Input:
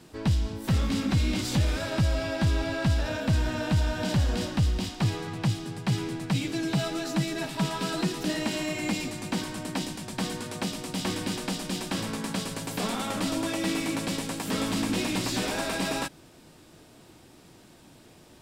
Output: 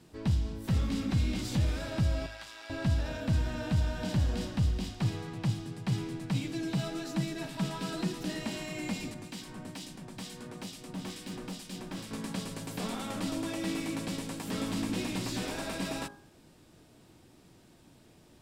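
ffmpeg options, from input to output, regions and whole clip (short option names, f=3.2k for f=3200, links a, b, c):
-filter_complex "[0:a]asettb=1/sr,asplit=3[a][b][c];[a]atrim=end=2.264[d];[b]atrim=start=2.26:end=2.7,asetpts=PTS-STARTPTS,afade=t=in:d=0.004:c=qsin,afade=t=out:st=0.436:d=0.004:c=qsin,highpass=1.1k,tremolo=f=110:d=0.462[e];[c]atrim=start=2.696[f];[d][e]acrossfade=d=0.004:c1=hsin:c2=qsin[g];[g][f]acrossfade=d=0.004:c1=qsin:c2=hsin,asettb=1/sr,asplit=3[h][i][j];[h]atrim=end=9.144[k];[i]atrim=start=9.14:end=12.11,asetpts=PTS-STARTPTS,afade=t=in:d=0.004:c=qsin,afade=t=out:st=2.966:d=0.004:c=qsin,acrossover=split=2100[l][m];[l]aeval=exprs='val(0)*(1-0.7/2+0.7/2*cos(2*PI*2.2*n/s))':c=same[n];[m]aeval=exprs='val(0)*(1-0.7/2-0.7/2*cos(2*PI*2.2*n/s))':c=same[o];[n][o]amix=inputs=2:normalize=0,aeval=exprs='0.0447*(abs(mod(val(0)/0.0447+3,4)-2)-1)':c=same[p];[j]atrim=start=12.106[q];[k][p]acrossfade=d=0.004:c1=hsin:c2=qsin[r];[r][q]acrossfade=d=0.004:c1=qsin:c2=hsin,lowshelf=f=350:g=5,bandreject=f=51.02:t=h:w=4,bandreject=f=102.04:t=h:w=4,bandreject=f=153.06:t=h:w=4,bandreject=f=204.08:t=h:w=4,bandreject=f=255.1:t=h:w=4,bandreject=f=306.12:t=h:w=4,bandreject=f=357.14:t=h:w=4,bandreject=f=408.16:t=h:w=4,bandreject=f=459.18:t=h:w=4,bandreject=f=510.2:t=h:w=4,bandreject=f=561.22:t=h:w=4,bandreject=f=612.24:t=h:w=4,bandreject=f=663.26:t=h:w=4,bandreject=f=714.28:t=h:w=4,bandreject=f=765.3:t=h:w=4,bandreject=f=816.32:t=h:w=4,bandreject=f=867.34:t=h:w=4,bandreject=f=918.36:t=h:w=4,bandreject=f=969.38:t=h:w=4,bandreject=f=1.0204k:t=h:w=4,bandreject=f=1.07142k:t=h:w=4,bandreject=f=1.12244k:t=h:w=4,bandreject=f=1.17346k:t=h:w=4,bandreject=f=1.22448k:t=h:w=4,bandreject=f=1.2755k:t=h:w=4,bandreject=f=1.32652k:t=h:w=4,bandreject=f=1.37754k:t=h:w=4,bandreject=f=1.42856k:t=h:w=4,bandreject=f=1.47958k:t=h:w=4,bandreject=f=1.5306k:t=h:w=4,bandreject=f=1.58162k:t=h:w=4,bandreject=f=1.63264k:t=h:w=4,volume=-7.5dB"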